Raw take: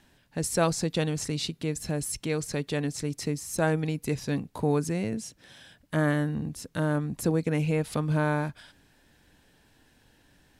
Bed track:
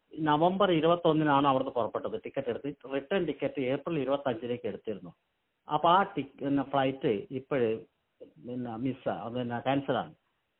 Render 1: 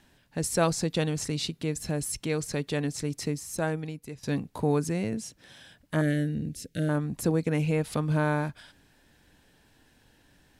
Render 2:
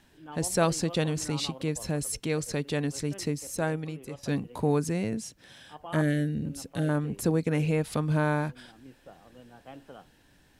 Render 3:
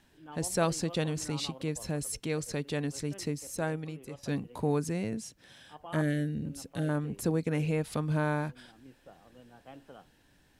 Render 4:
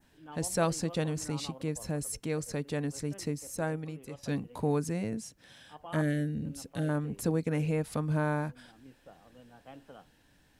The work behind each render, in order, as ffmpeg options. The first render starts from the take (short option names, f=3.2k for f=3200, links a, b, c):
-filter_complex "[0:a]asettb=1/sr,asplit=3[a][b][c];[a]atrim=end=6.014[d];[b]atrim=start=6.01:end=6.89,asetpts=PTS-STARTPTS,afade=t=in:d=0.004:c=qsin,afade=t=out:st=0.876:d=0.004:c=qsin,asuperstop=centerf=1000:order=4:qfactor=0.81[e];[c]atrim=start=6.886[f];[d][e]acrossfade=d=0.004:c1=hsin:c2=qsin[g];[g][f]acrossfade=d=0.004:c1=qsin:c2=hsin,asplit=2[h][i];[h]atrim=end=4.23,asetpts=PTS-STARTPTS,afade=t=out:st=3.24:d=0.99:silence=0.158489[j];[i]atrim=start=4.23,asetpts=PTS-STARTPTS,afade=t=in:d=0.004:c=hsin:silence=0.158489[k];[j][k]concat=n=2:v=0:a=1"
-filter_complex "[1:a]volume=-18dB[a];[0:a][a]amix=inputs=2:normalize=0"
-af "volume=-3.5dB"
-af "bandreject=f=370:w=12,adynamicequalizer=threshold=0.00178:dfrequency=3400:dqfactor=1.1:tfrequency=3400:tqfactor=1.1:attack=5:release=100:ratio=0.375:range=3:mode=cutabove:tftype=bell"